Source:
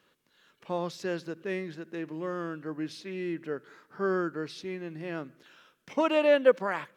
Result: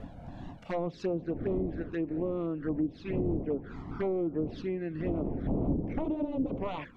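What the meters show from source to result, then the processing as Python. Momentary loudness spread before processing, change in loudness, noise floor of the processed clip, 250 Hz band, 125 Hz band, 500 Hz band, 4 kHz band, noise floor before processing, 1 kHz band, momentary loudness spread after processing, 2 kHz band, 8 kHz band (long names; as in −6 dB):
16 LU, −2.5 dB, −50 dBFS, +3.5 dB, +7.0 dB, −5.0 dB, below −10 dB, −70 dBFS, −6.5 dB, 5 LU, −12.5 dB, can't be measured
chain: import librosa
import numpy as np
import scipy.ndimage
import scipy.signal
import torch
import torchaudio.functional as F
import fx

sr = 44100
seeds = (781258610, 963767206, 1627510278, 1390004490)

y = fx.dmg_wind(x, sr, seeds[0], corner_hz=350.0, level_db=-37.0)
y = 10.0 ** (-26.0 / 20.0) * (np.abs((y / 10.0 ** (-26.0 / 20.0) + 3.0) % 4.0 - 2.0) - 1.0)
y = fx.env_flanger(y, sr, rest_ms=2.1, full_db=-31.0)
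y = fx.small_body(y, sr, hz=(280.0, 700.0, 3400.0), ring_ms=90, db=6)
y = fx.env_lowpass_down(y, sr, base_hz=420.0, full_db=-29.0)
y = F.gain(torch.from_numpy(y), 4.0).numpy()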